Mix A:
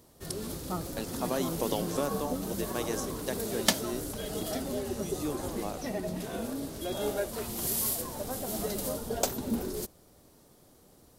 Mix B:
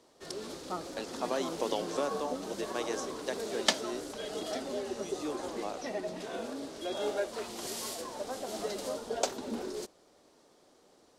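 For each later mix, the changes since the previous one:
master: add three-band isolator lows -18 dB, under 270 Hz, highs -24 dB, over 7.7 kHz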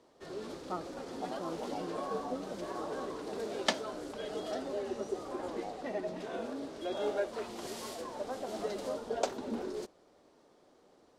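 speech: add band-pass filter 760 Hz, Q 7.1; master: add treble shelf 3.7 kHz -10.5 dB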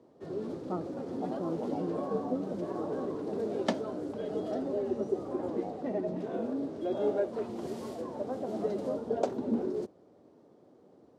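background: add high-pass 87 Hz 24 dB/octave; master: add tilt shelf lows +10 dB, about 790 Hz

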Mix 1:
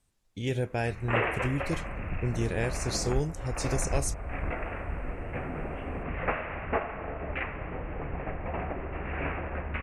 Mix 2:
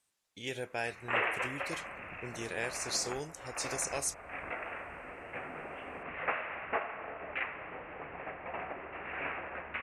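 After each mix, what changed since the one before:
master: add high-pass 1 kHz 6 dB/octave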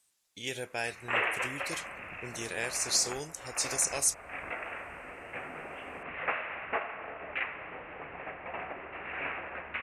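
master: add treble shelf 3.5 kHz +9 dB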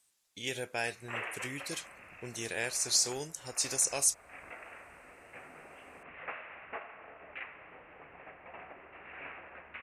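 background -9.5 dB

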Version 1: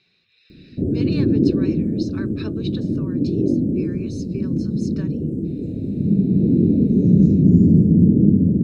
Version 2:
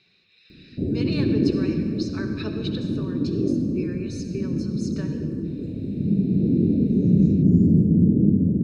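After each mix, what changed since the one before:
background -4.0 dB; reverb: on, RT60 2.1 s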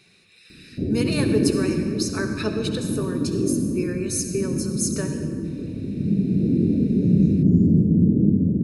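speech: remove four-pole ladder low-pass 4.9 kHz, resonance 40%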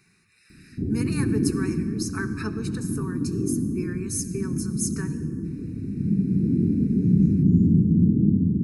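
speech: send -7.5 dB; master: add static phaser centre 1.4 kHz, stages 4

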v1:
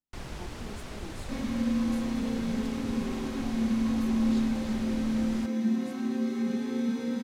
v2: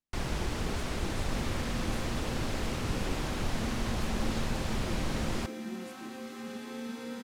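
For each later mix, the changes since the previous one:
first sound +6.5 dB; second sound: send -11.0 dB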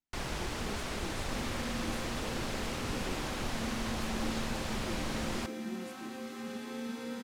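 first sound: add bass shelf 360 Hz -6.5 dB

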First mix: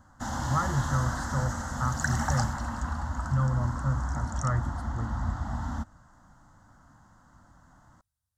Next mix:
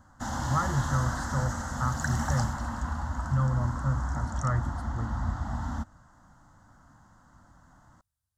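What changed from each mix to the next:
second sound -3.5 dB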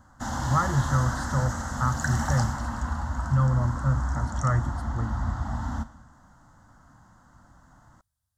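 speech +4.0 dB; reverb: on, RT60 1.1 s

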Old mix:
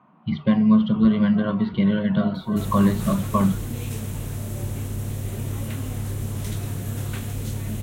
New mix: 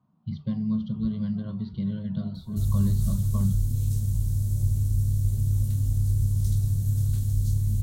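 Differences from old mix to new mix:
background: add bass shelf 140 Hz +9 dB; master: add FFT filter 100 Hz 0 dB, 330 Hz -17 dB, 2.5 kHz -25 dB, 4.5 kHz -4 dB

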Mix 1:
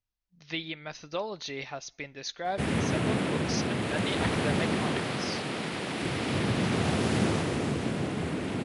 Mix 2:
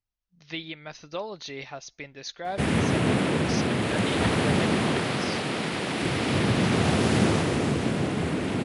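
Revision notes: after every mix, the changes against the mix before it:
speech: send -10.5 dB; background +4.5 dB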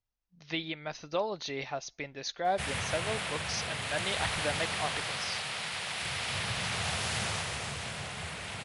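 background: add amplifier tone stack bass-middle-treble 10-0-10; master: add peaking EQ 720 Hz +3.5 dB 1.1 oct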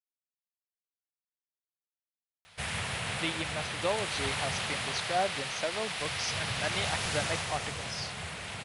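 speech: entry +2.70 s

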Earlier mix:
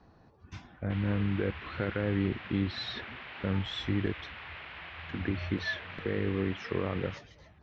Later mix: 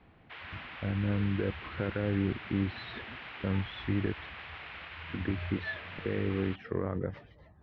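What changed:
speech: add distance through air 390 m; background: entry -0.60 s

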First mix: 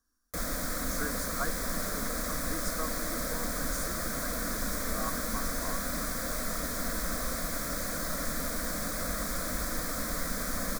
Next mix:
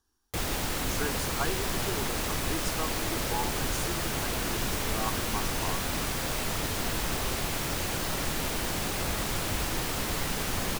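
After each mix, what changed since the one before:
master: remove static phaser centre 570 Hz, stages 8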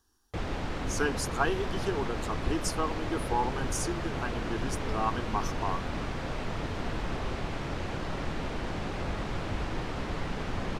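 speech +5.0 dB; background: add tape spacing loss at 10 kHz 27 dB

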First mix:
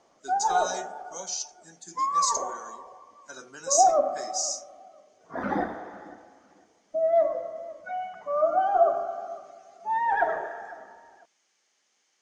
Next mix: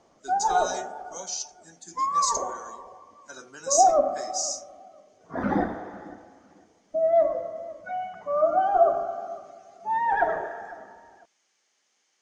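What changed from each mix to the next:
background: add bass shelf 280 Hz +9.5 dB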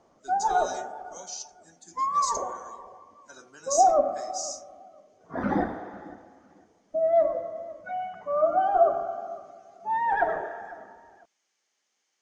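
speech -5.5 dB; reverb: off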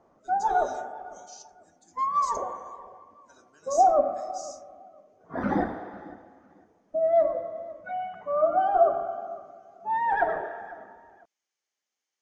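speech -10.0 dB

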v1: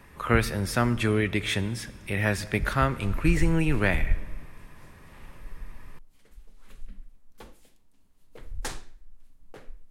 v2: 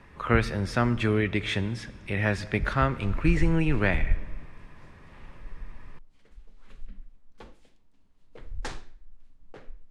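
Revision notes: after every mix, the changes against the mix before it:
master: add distance through air 92 m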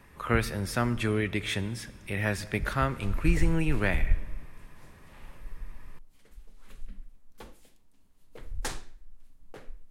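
speech -3.5 dB; master: remove distance through air 92 m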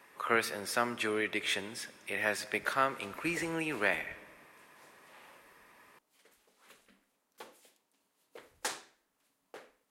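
master: add high-pass 420 Hz 12 dB/octave

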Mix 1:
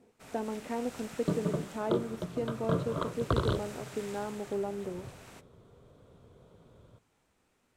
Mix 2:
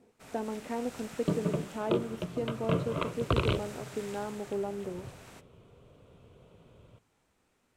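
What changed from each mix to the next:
second sound: remove Chebyshev band-stop 1.7–3.5 kHz, order 2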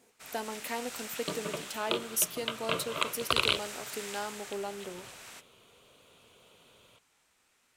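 speech: remove distance through air 350 m; second sound: add tone controls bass -7 dB, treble +12 dB; master: add tilt shelf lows -8.5 dB, about 840 Hz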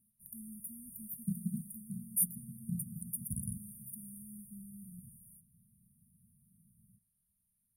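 second sound: remove static phaser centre 1.2 kHz, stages 8; master: add brick-wall FIR band-stop 230–8900 Hz

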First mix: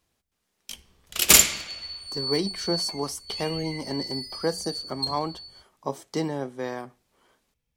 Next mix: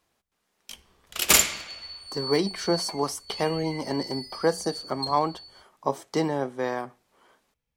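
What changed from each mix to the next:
background -4.5 dB; master: add peaking EQ 990 Hz +5.5 dB 2.6 oct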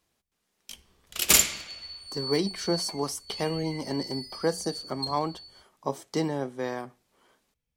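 master: add peaking EQ 990 Hz -5.5 dB 2.6 oct

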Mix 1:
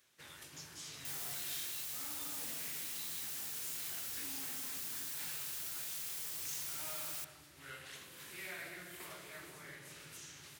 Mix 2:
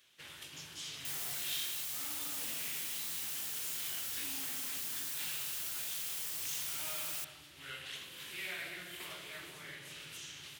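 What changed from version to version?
first sound: add peaking EQ 3.1 kHz +10 dB 0.85 oct; reverb: on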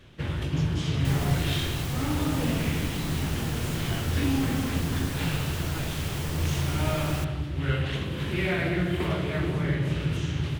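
master: remove differentiator

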